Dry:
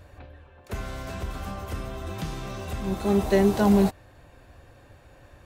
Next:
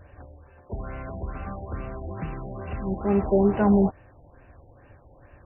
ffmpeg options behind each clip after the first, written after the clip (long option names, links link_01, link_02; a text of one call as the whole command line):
ffmpeg -i in.wav -af "afftfilt=real='re*lt(b*sr/1024,920*pow(3000/920,0.5+0.5*sin(2*PI*2.3*pts/sr)))':imag='im*lt(b*sr/1024,920*pow(3000/920,0.5+0.5*sin(2*PI*2.3*pts/sr)))':win_size=1024:overlap=0.75" out.wav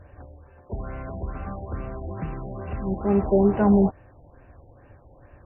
ffmpeg -i in.wav -af "highshelf=frequency=2600:gain=-9.5,volume=1.5dB" out.wav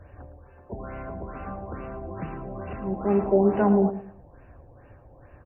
ffmpeg -i in.wav -filter_complex "[0:a]aecho=1:1:112|224|336:0.224|0.0604|0.0163,acrossover=split=180[link_01][link_02];[link_01]acompressor=threshold=-38dB:ratio=6[link_03];[link_03][link_02]amix=inputs=2:normalize=0" out.wav